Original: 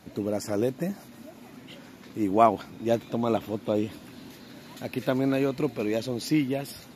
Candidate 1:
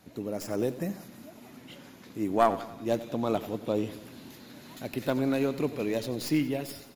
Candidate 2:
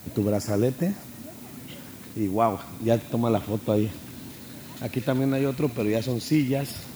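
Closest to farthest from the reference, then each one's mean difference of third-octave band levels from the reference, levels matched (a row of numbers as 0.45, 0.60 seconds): 1, 2; 2.5, 4.5 decibels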